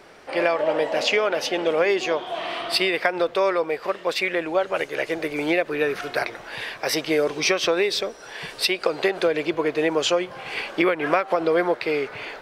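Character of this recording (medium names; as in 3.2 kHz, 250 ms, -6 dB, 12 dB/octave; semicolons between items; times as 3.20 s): noise floor -43 dBFS; spectral tilt -3.0 dB/octave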